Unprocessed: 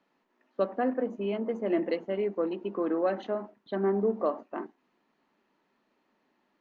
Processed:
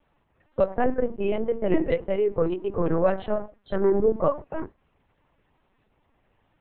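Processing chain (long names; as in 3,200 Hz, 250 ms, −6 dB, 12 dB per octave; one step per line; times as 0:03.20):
spectral magnitudes quantised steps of 15 dB
linear-prediction vocoder at 8 kHz pitch kept
level +6.5 dB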